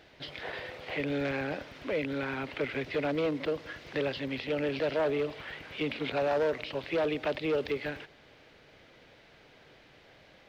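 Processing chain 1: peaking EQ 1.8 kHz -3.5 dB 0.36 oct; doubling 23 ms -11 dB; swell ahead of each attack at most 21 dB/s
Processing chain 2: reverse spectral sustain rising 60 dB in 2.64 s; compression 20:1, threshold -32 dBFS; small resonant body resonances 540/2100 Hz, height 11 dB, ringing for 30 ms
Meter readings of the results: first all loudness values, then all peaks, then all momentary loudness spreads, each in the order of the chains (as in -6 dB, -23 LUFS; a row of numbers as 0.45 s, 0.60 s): -30.0 LUFS, -31.5 LUFS; -10.5 dBFS, -18.5 dBFS; 6 LU, 19 LU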